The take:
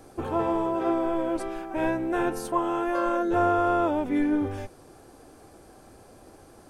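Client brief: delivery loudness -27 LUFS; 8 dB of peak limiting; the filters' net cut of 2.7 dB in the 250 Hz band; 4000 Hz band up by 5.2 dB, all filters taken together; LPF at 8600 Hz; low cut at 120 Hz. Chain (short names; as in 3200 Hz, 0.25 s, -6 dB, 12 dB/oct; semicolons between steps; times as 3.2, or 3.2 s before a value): HPF 120 Hz; LPF 8600 Hz; bell 250 Hz -4 dB; bell 4000 Hz +7 dB; gain +3 dB; limiter -17 dBFS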